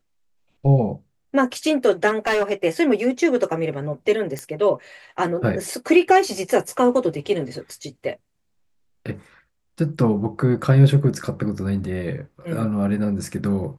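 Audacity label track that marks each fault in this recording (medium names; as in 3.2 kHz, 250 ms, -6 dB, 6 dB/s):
2.070000	2.530000	clipped -16 dBFS
4.390000	4.390000	pop -14 dBFS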